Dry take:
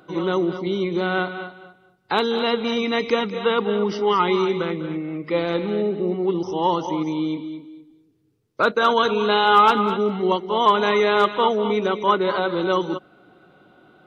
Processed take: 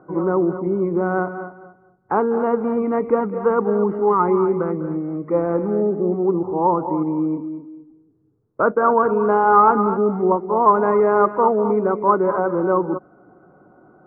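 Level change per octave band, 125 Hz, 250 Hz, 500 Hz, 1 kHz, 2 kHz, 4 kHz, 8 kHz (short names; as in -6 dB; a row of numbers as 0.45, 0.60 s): +3.0 dB, +3.0 dB, +3.0 dB, +2.0 dB, -5.0 dB, under -35 dB, n/a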